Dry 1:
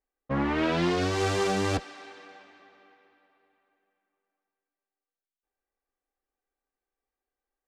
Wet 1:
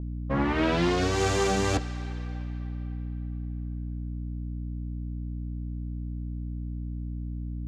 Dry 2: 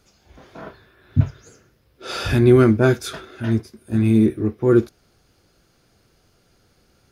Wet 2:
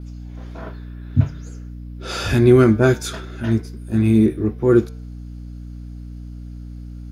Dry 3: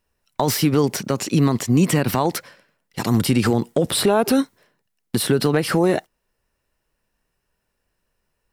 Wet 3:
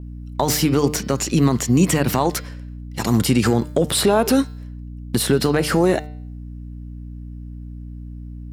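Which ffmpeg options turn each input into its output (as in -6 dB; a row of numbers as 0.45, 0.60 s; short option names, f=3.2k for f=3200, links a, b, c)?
-af "bandreject=f=150.2:t=h:w=4,bandreject=f=300.4:t=h:w=4,bandreject=f=450.6:t=h:w=4,bandreject=f=600.8:t=h:w=4,bandreject=f=751:t=h:w=4,bandreject=f=901.2:t=h:w=4,bandreject=f=1.0514k:t=h:w=4,bandreject=f=1.2016k:t=h:w=4,bandreject=f=1.3518k:t=h:w=4,bandreject=f=1.502k:t=h:w=4,bandreject=f=1.6522k:t=h:w=4,bandreject=f=1.8024k:t=h:w=4,bandreject=f=1.9526k:t=h:w=4,bandreject=f=2.1028k:t=h:w=4,bandreject=f=2.253k:t=h:w=4,bandreject=f=2.4032k:t=h:w=4,bandreject=f=2.5534k:t=h:w=4,bandreject=f=2.7036k:t=h:w=4,bandreject=f=2.8538k:t=h:w=4,bandreject=f=3.004k:t=h:w=4,bandreject=f=3.1542k:t=h:w=4,bandreject=f=3.3044k:t=h:w=4,bandreject=f=3.4546k:t=h:w=4,bandreject=f=3.6048k:t=h:w=4,bandreject=f=3.755k:t=h:w=4,bandreject=f=3.9052k:t=h:w=4,bandreject=f=4.0554k:t=h:w=4,bandreject=f=4.2056k:t=h:w=4,bandreject=f=4.3558k:t=h:w=4,bandreject=f=4.506k:t=h:w=4,bandreject=f=4.6562k:t=h:w=4,bandreject=f=4.8064k:t=h:w=4,bandreject=f=4.9566k:t=h:w=4,bandreject=f=5.1068k:t=h:w=4,bandreject=f=5.257k:t=h:w=4,bandreject=f=5.4072k:t=h:w=4,aeval=exprs='val(0)+0.0224*(sin(2*PI*60*n/s)+sin(2*PI*2*60*n/s)/2+sin(2*PI*3*60*n/s)/3+sin(2*PI*4*60*n/s)/4+sin(2*PI*5*60*n/s)/5)':c=same,adynamicequalizer=threshold=0.00316:dfrequency=6800:dqfactor=4.2:tfrequency=6800:tqfactor=4.2:attack=5:release=100:ratio=0.375:range=3:mode=boostabove:tftype=bell,volume=1dB"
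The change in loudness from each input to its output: -3.5, +1.0, +1.0 LU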